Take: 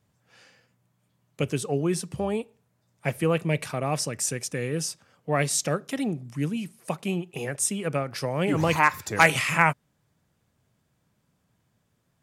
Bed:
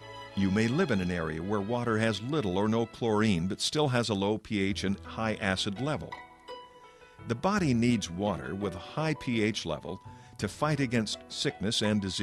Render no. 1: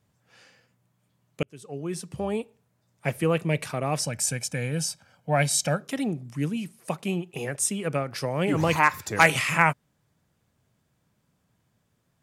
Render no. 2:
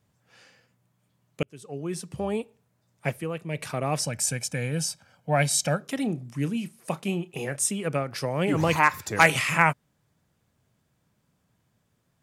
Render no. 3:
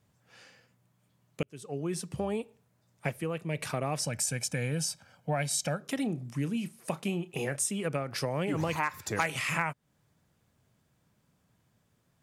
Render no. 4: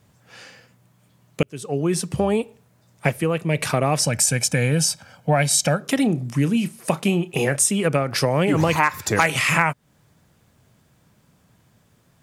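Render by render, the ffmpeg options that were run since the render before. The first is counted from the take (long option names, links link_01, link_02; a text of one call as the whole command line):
ffmpeg -i in.wav -filter_complex "[0:a]asettb=1/sr,asplit=3[link_01][link_02][link_03];[link_01]atrim=end=4.034[link_04];[link_02]atrim=start=4.03:end=5.82,asetpts=PTS-STARTPTS,afade=type=in:duration=0.004:curve=qsin,afade=type=out:start_time=1.786:duration=0.004:curve=qsin,aecho=1:1:1.3:0.65,atrim=end_sample=78939[link_05];[link_03]atrim=start=5.816[link_06];[link_04][link_05]acrossfade=duration=0.004:curve1=hsin:curve2=qsin[link_07];[link_07][link_06]acrossfade=duration=0.004:curve1=qsin:curve2=hsin,asplit=2[link_08][link_09];[link_08]atrim=end=1.43,asetpts=PTS-STARTPTS,afade=type=out:start_time=1.426:duration=0.004:curve=hsin[link_10];[link_09]atrim=start=1.43,asetpts=PTS-STARTPTS,afade=type=in:duration=0.97[link_11];[link_10][link_11]concat=n=2:v=0:a=1" out.wav
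ffmpeg -i in.wav -filter_complex "[0:a]asettb=1/sr,asplit=3[link_01][link_02][link_03];[link_01]atrim=end=5.994[link_04];[link_02]atrim=start=5.99:end=7.71,asetpts=PTS-STARTPTS,afade=type=in:duration=0.004:curve=qsin,afade=type=out:start_time=1.716:duration=0.004:curve=qsin,asplit=2[link_05][link_06];[link_06]adelay=30,volume=-13.5dB[link_07];[link_05][link_07]amix=inputs=2:normalize=0,atrim=end_sample=75852[link_08];[link_03]atrim=start=7.706[link_09];[link_04][link_08]acrossfade=duration=0.004:curve1=hsin:curve2=qsin[link_10];[link_10][link_09]acrossfade=duration=0.004:curve1=qsin:curve2=hsin,asplit=3[link_11][link_12][link_13];[link_11]atrim=end=3.32,asetpts=PTS-STARTPTS,afade=type=out:start_time=3.07:duration=0.25:curve=qua:silence=0.354813[link_14];[link_12]atrim=start=3.32:end=3.42,asetpts=PTS-STARTPTS,volume=-9dB[link_15];[link_13]atrim=start=3.42,asetpts=PTS-STARTPTS,afade=type=in:duration=0.25:curve=qua:silence=0.354813[link_16];[link_14][link_15][link_16]concat=n=3:v=0:a=1" out.wav
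ffmpeg -i in.wav -af "acompressor=threshold=-28dB:ratio=4" out.wav
ffmpeg -i in.wav -af "volume=12dB,alimiter=limit=-2dB:level=0:latency=1" out.wav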